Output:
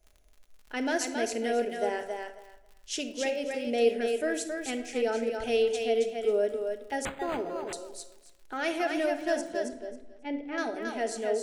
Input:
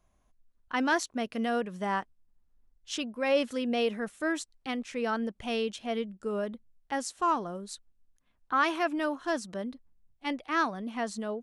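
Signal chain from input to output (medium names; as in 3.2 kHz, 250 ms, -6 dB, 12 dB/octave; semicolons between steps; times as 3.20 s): peaking EQ 3.6 kHz -5.5 dB 0.85 oct; in parallel at +2 dB: peak limiter -23 dBFS, peak gain reduction 8 dB; 3.27–3.67 s: on the sum: level held to a coarse grid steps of 14 dB; static phaser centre 460 Hz, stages 4; crackle 35 per s -41 dBFS; 9.41–10.58 s: tape spacing loss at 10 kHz 32 dB; on a send: thinning echo 272 ms, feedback 18%, high-pass 420 Hz, level -4 dB; on the sum: simulated room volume 2200 m³, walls furnished, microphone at 1.4 m; 7.05–7.73 s: decimation joined by straight lines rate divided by 8×; trim -2.5 dB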